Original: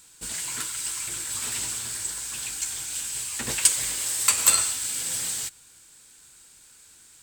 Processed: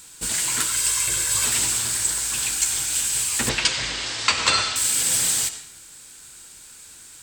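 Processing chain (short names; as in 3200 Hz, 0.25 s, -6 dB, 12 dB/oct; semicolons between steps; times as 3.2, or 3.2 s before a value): 0.71–1.46 comb 1.9 ms, depth 58%; 3.49–4.76 LPF 5100 Hz 24 dB/oct; reverb RT60 0.60 s, pre-delay 50 ms, DRR 10.5 dB; gain +8 dB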